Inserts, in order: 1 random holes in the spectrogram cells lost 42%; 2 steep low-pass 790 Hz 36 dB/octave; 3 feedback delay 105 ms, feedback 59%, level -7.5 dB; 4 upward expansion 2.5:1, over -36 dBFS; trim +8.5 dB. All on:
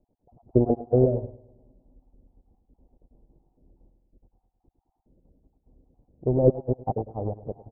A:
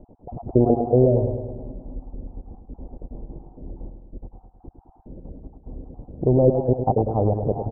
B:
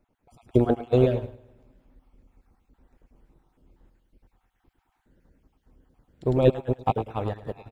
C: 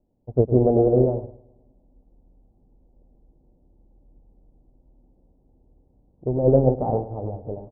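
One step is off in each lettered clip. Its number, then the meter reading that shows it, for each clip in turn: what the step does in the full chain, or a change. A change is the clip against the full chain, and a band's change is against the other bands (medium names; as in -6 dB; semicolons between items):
4, crest factor change -4.5 dB; 2, 1 kHz band +4.5 dB; 1, crest factor change -4.5 dB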